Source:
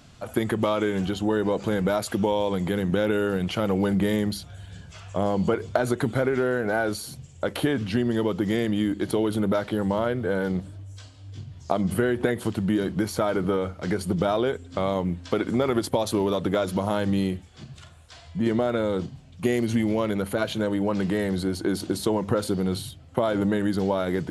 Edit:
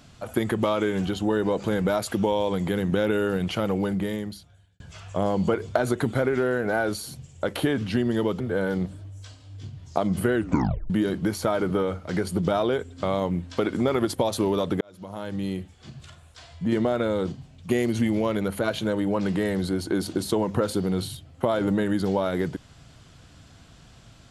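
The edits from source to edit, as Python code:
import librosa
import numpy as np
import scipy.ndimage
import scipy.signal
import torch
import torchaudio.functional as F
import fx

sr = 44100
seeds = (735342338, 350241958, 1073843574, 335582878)

y = fx.edit(x, sr, fx.fade_out_span(start_s=3.52, length_s=1.28),
    fx.cut(start_s=8.4, length_s=1.74),
    fx.tape_stop(start_s=12.09, length_s=0.55),
    fx.fade_in_span(start_s=16.55, length_s=1.16), tone=tone)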